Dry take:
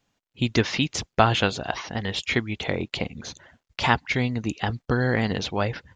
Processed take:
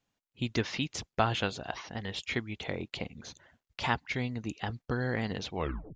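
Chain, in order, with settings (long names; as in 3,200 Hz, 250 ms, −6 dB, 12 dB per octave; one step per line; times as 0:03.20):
turntable brake at the end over 0.42 s
level −9 dB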